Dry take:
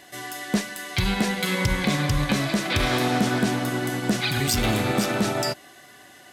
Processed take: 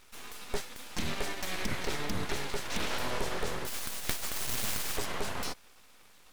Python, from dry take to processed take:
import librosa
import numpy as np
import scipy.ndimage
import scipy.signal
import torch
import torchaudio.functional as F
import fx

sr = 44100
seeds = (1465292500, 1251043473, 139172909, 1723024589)

y = fx.spec_flatten(x, sr, power=0.22, at=(3.66, 4.96), fade=0.02)
y = np.abs(y)
y = y * librosa.db_to_amplitude(-8.0)